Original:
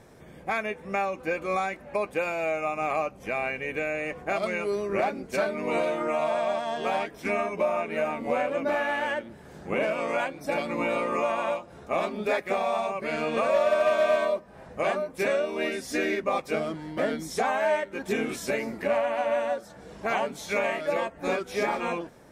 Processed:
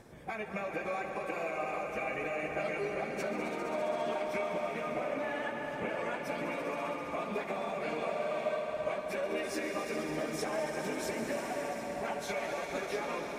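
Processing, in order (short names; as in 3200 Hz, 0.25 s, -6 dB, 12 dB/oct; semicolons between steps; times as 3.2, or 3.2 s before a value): compressor 16:1, threshold -30 dBFS, peak gain reduction 12 dB; swelling echo 0.111 s, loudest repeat 5, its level -10.5 dB; plain phase-vocoder stretch 0.6×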